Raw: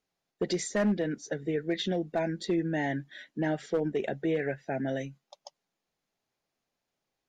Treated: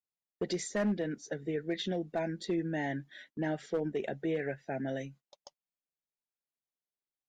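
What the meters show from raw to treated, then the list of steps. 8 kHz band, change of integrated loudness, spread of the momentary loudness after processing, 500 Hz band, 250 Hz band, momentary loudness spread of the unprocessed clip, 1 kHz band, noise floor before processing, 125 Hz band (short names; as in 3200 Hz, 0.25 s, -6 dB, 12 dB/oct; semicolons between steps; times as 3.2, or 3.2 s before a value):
-4.0 dB, -4.0 dB, 7 LU, -4.0 dB, -4.0 dB, 7 LU, -4.0 dB, under -85 dBFS, -4.0 dB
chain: gate -51 dBFS, range -17 dB; gain -4 dB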